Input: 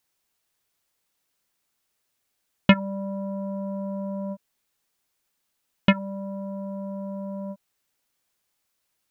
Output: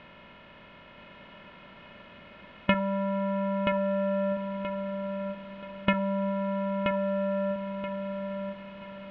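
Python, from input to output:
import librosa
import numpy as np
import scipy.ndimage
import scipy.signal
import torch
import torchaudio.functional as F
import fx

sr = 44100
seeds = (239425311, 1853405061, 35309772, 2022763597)

p1 = fx.bin_compress(x, sr, power=0.4)
p2 = scipy.signal.sosfilt(scipy.signal.butter(2, 2600.0, 'lowpass', fs=sr, output='sos'), p1)
p3 = fx.peak_eq(p2, sr, hz=180.0, db=-6.5, octaves=1.6)
p4 = p3 + fx.echo_feedback(p3, sr, ms=978, feedback_pct=32, wet_db=-5.0, dry=0)
y = p4 * 10.0 ** (-5.0 / 20.0)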